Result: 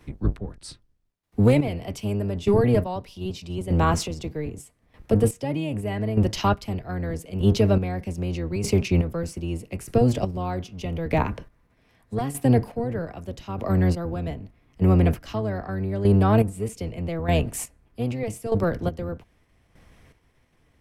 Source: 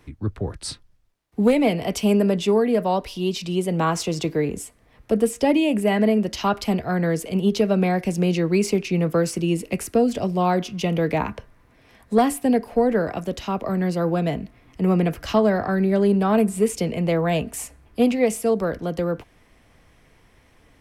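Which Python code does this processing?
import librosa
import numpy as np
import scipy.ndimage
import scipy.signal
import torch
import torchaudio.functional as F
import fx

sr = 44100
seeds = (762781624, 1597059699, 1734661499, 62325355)

p1 = fx.octave_divider(x, sr, octaves=1, level_db=2.0)
p2 = fx.level_steps(p1, sr, step_db=11)
p3 = p1 + (p2 * librosa.db_to_amplitude(-1.0))
p4 = fx.chopper(p3, sr, hz=0.81, depth_pct=65, duty_pct=30)
y = p4 * librosa.db_to_amplitude(-4.5)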